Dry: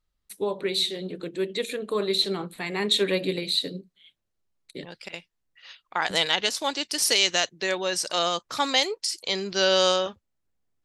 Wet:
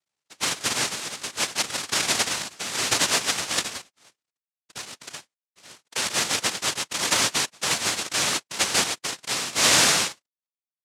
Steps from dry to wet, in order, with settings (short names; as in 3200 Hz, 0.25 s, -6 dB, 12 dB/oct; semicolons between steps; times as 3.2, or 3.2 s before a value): half-waves squared off; noise vocoder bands 1; gain -3 dB